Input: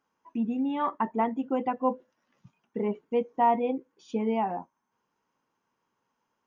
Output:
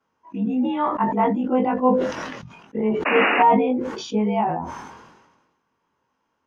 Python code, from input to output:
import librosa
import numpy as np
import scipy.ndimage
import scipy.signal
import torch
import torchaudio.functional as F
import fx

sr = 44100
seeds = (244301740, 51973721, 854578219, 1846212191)

y = fx.frame_reverse(x, sr, frame_ms=47.0)
y = fx.peak_eq(y, sr, hz=79.0, db=6.5, octaves=0.44)
y = fx.spec_paint(y, sr, seeds[0], shape='noise', start_s=3.05, length_s=0.38, low_hz=210.0, high_hz=2900.0, level_db=-29.0)
y = fx.air_absorb(y, sr, metres=71.0)
y = fx.sustainer(y, sr, db_per_s=45.0)
y = y * librosa.db_to_amplitude(9.0)